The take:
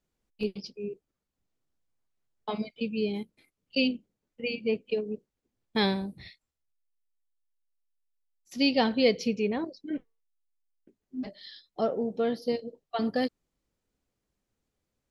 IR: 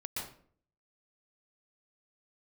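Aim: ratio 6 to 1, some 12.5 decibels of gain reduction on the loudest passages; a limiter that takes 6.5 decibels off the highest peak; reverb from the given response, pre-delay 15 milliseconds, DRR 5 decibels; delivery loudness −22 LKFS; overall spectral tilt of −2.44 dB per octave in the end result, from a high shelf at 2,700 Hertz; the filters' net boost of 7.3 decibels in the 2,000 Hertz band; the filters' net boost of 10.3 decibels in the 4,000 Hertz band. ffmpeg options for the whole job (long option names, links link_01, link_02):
-filter_complex "[0:a]equalizer=frequency=2000:width_type=o:gain=3.5,highshelf=frequency=2700:gain=7,equalizer=frequency=4000:width_type=o:gain=6,acompressor=threshold=-29dB:ratio=6,alimiter=limit=-22.5dB:level=0:latency=1,asplit=2[link_01][link_02];[1:a]atrim=start_sample=2205,adelay=15[link_03];[link_02][link_03]afir=irnorm=-1:irlink=0,volume=-6.5dB[link_04];[link_01][link_04]amix=inputs=2:normalize=0,volume=13dB"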